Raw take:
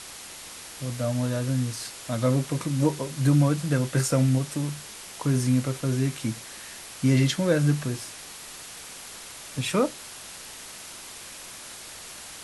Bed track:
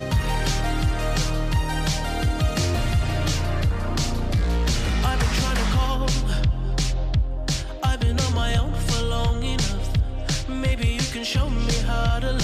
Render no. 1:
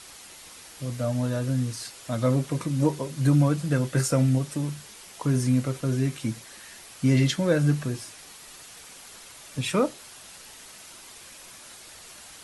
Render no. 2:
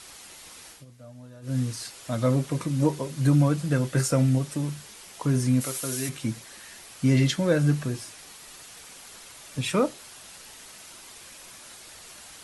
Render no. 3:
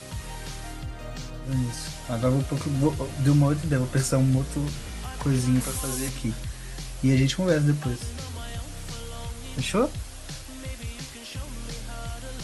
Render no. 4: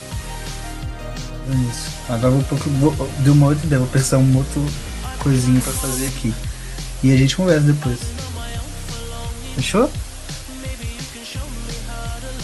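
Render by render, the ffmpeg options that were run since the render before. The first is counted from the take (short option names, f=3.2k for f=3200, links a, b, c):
-af "afftdn=nr=6:nf=-42"
-filter_complex "[0:a]asplit=3[a][b][c];[a]afade=t=out:st=5.6:d=0.02[d];[b]aemphasis=mode=production:type=riaa,afade=t=in:st=5.6:d=0.02,afade=t=out:st=6.08:d=0.02[e];[c]afade=t=in:st=6.08:d=0.02[f];[d][e][f]amix=inputs=3:normalize=0,asplit=3[g][h][i];[g]atrim=end=0.85,asetpts=PTS-STARTPTS,afade=t=out:st=0.7:d=0.15:silence=0.112202[j];[h]atrim=start=0.85:end=1.42,asetpts=PTS-STARTPTS,volume=-19dB[k];[i]atrim=start=1.42,asetpts=PTS-STARTPTS,afade=t=in:d=0.15:silence=0.112202[l];[j][k][l]concat=n=3:v=0:a=1"
-filter_complex "[1:a]volume=-14dB[a];[0:a][a]amix=inputs=2:normalize=0"
-af "volume=7.5dB"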